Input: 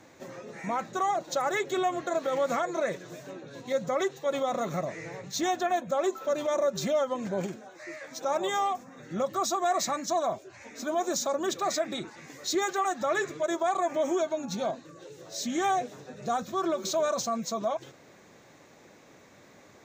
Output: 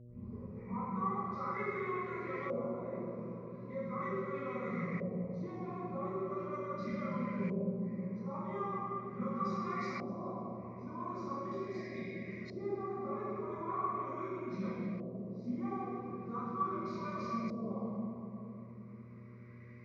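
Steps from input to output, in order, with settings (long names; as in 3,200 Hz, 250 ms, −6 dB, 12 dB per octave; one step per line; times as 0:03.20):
turntable start at the beginning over 0.38 s
guitar amp tone stack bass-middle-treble 6-0-2
mains-hum notches 50/100/150/200 Hz
time-frequency box erased 0:11.35–0:12.23, 760–1,600 Hz
EQ curve with evenly spaced ripples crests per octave 0.86, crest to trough 14 dB
convolution reverb RT60 2.7 s, pre-delay 3 ms, DRR −15.5 dB
auto-filter low-pass saw up 0.4 Hz 640–1,900 Hz
hum with harmonics 120 Hz, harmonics 5, −48 dBFS −9 dB per octave
notch comb filter 890 Hz
level −4 dB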